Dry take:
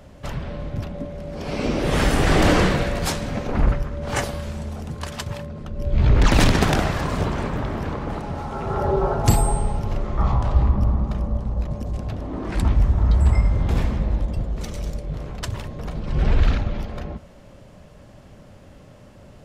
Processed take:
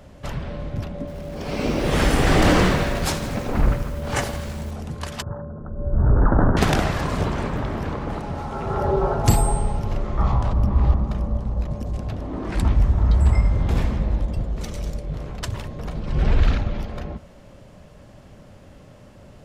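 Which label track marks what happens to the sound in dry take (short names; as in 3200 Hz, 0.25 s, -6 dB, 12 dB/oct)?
0.990000	4.710000	lo-fi delay 82 ms, feedback 80%, word length 6-bit, level -13 dB
5.220000	6.570000	elliptic low-pass 1500 Hz
10.530000	10.940000	reverse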